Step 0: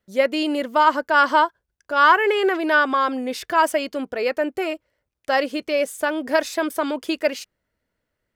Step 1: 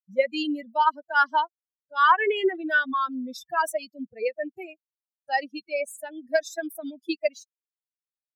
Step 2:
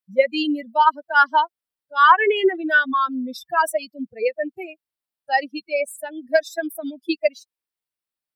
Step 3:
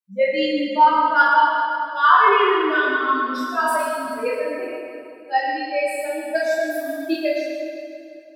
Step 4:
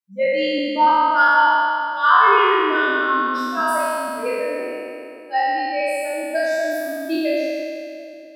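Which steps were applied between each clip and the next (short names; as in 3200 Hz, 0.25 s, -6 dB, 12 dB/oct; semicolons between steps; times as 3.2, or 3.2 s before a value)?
per-bin expansion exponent 3; HPF 170 Hz
bell 6600 Hz -11.5 dB 0.25 oct; gain +5.5 dB
reverb RT60 2.6 s, pre-delay 7 ms, DRR -9 dB; gain -8.5 dB
spectral trails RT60 2.40 s; gain -3 dB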